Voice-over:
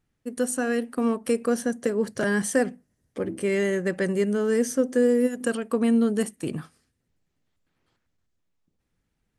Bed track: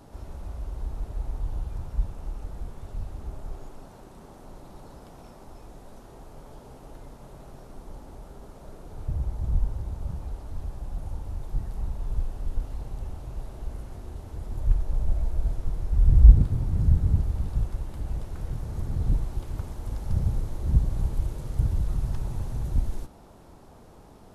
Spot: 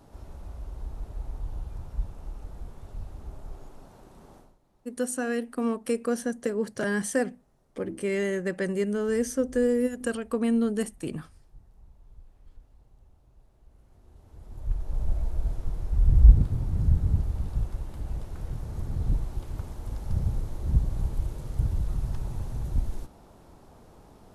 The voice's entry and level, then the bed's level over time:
4.60 s, -3.5 dB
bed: 4.38 s -4 dB
4.59 s -22.5 dB
13.64 s -22.5 dB
15.03 s -2 dB

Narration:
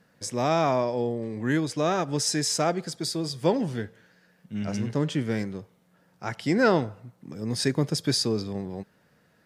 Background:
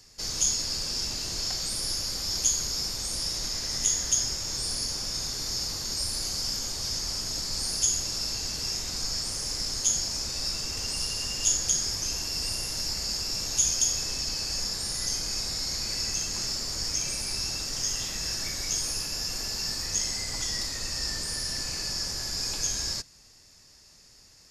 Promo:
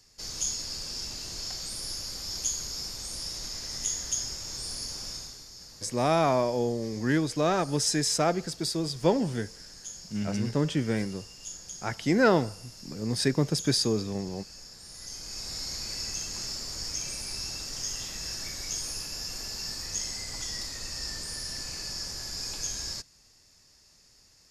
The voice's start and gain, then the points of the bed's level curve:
5.60 s, -0.5 dB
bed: 5.11 s -5.5 dB
5.5 s -16.5 dB
14.77 s -16.5 dB
15.56 s -4.5 dB

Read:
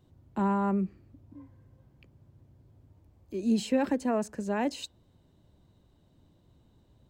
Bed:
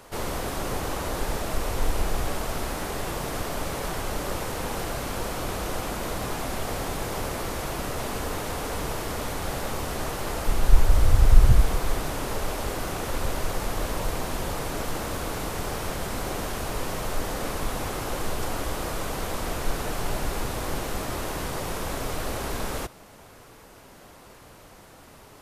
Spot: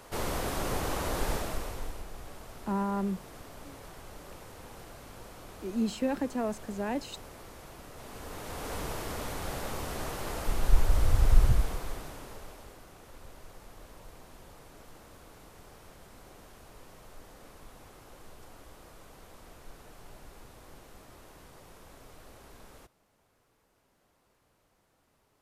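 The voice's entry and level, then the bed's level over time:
2.30 s, -3.5 dB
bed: 1.33 s -2.5 dB
2.06 s -17.5 dB
7.91 s -17.5 dB
8.73 s -6 dB
11.4 s -6 dB
12.86 s -22 dB

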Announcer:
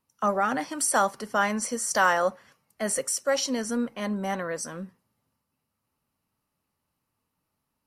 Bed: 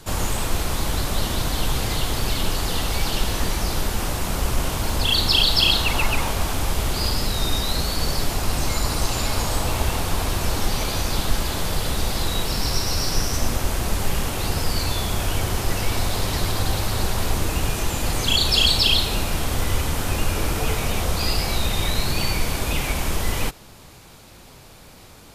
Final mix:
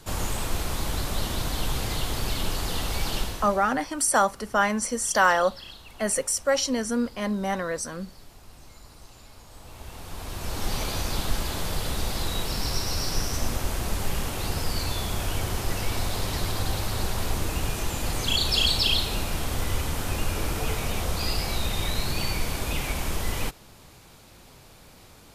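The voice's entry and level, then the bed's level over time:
3.20 s, +2.0 dB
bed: 3.19 s -5 dB
3.81 s -26 dB
9.45 s -26 dB
10.73 s -5 dB

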